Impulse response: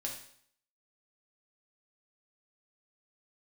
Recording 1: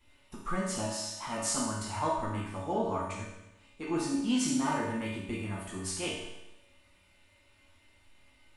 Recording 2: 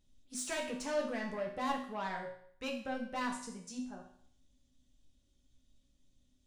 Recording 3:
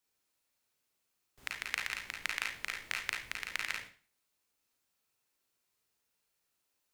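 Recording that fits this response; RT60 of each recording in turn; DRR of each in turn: 2; 0.95, 0.60, 0.40 seconds; −7.5, −1.0, −1.0 decibels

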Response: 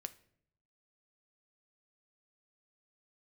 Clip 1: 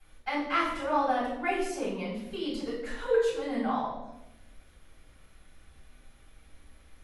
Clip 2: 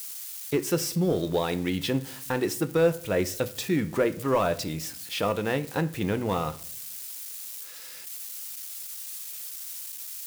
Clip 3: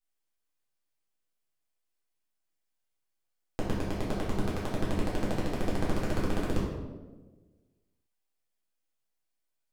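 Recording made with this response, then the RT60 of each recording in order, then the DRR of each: 2; 0.90, 0.65, 1.3 seconds; −11.0, 10.5, −7.0 decibels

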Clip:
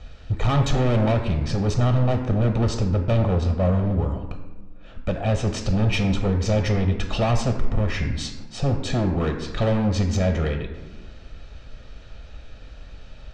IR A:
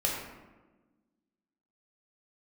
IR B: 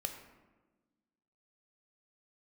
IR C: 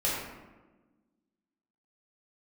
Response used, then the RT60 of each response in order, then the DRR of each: B; 1.2, 1.3, 1.2 seconds; −3.0, 4.5, −7.5 decibels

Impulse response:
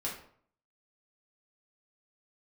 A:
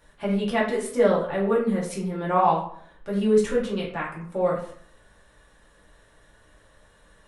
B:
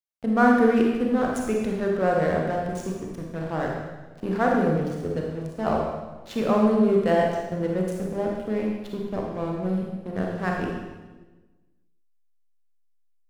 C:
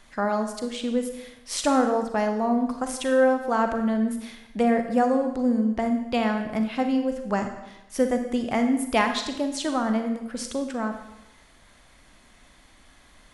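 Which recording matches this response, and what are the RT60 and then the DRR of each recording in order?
A; 0.55, 1.2, 0.95 seconds; −5.0, −1.0, 5.5 decibels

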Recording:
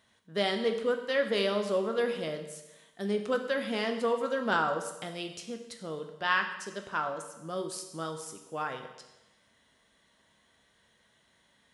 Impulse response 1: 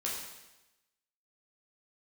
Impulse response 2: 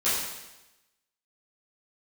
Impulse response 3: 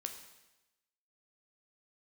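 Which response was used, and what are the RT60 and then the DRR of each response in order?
3; 1.0, 1.0, 1.0 seconds; −5.0, −13.0, 5.0 decibels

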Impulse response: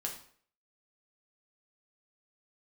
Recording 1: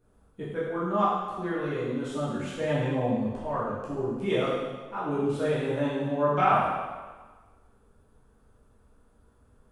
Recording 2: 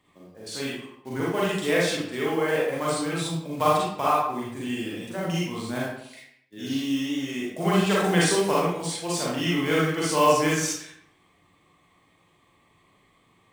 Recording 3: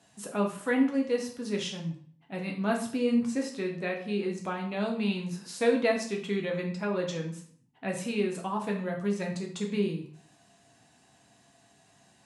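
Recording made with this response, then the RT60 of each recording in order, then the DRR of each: 3; 1.4, 0.75, 0.55 seconds; −9.5, −6.0, 0.0 decibels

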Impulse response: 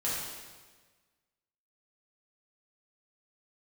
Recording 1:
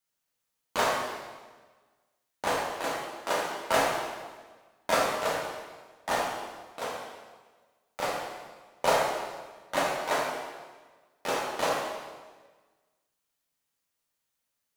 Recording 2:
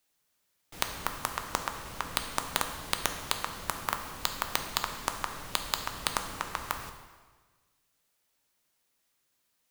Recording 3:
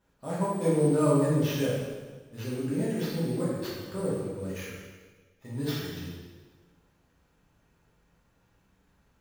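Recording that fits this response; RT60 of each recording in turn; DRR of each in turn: 3; 1.4, 1.4, 1.4 seconds; −4.0, 5.5, −8.5 decibels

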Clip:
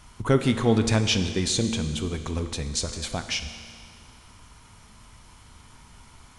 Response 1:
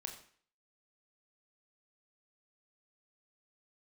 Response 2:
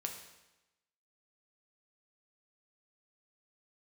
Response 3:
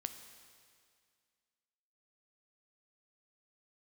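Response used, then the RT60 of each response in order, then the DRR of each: 3; 0.50, 1.0, 2.1 seconds; 3.0, 2.5, 8.0 decibels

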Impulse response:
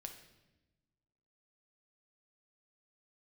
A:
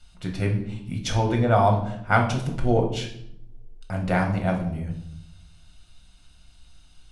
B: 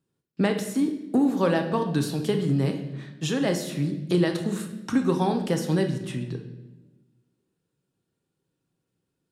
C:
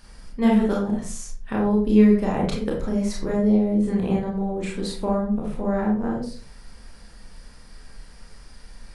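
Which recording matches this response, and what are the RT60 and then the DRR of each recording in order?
B; 0.70, 1.0, 0.40 seconds; 1.0, 4.5, −2.5 decibels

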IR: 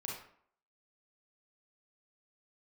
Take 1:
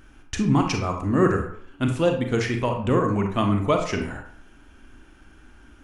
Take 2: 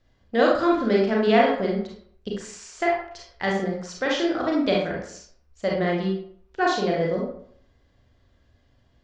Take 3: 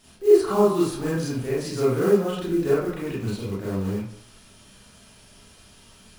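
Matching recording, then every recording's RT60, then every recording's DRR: 2; 0.60, 0.60, 0.60 seconds; 3.0, −3.5, −8.5 decibels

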